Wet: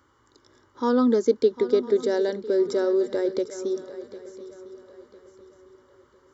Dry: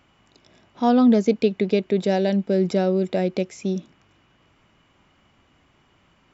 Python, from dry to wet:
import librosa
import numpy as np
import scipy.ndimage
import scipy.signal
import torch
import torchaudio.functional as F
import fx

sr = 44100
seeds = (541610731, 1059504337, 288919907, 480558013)

y = scipy.signal.sosfilt(scipy.signal.butter(2, 60.0, 'highpass', fs=sr, output='sos'), x)
y = fx.fixed_phaser(y, sr, hz=690.0, stages=6)
y = fx.echo_swing(y, sr, ms=1003, ratio=3, feedback_pct=33, wet_db=-15.0)
y = F.gain(torch.from_numpy(y), 1.5).numpy()